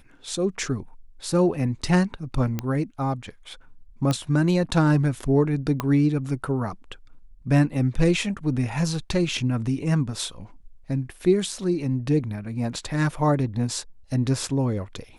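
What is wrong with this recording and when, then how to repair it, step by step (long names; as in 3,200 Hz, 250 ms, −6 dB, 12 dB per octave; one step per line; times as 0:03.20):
0:02.59: click −13 dBFS
0:04.11: click −12 dBFS
0:05.80: click −11 dBFS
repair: click removal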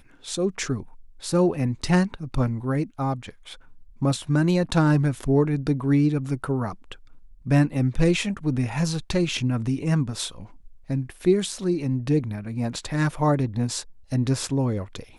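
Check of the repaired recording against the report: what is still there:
0:05.80: click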